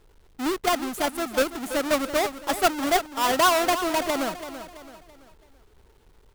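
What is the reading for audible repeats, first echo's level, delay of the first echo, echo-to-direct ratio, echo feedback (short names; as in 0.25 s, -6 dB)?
4, -11.5 dB, 0.333 s, -10.5 dB, 41%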